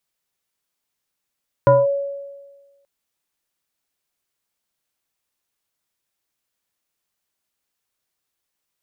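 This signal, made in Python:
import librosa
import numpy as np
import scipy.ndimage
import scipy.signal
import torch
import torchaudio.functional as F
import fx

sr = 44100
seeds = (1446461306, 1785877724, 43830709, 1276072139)

y = fx.fm2(sr, length_s=1.18, level_db=-7.0, carrier_hz=560.0, ratio=0.77, index=1.0, index_s=0.2, decay_s=1.37, shape='linear')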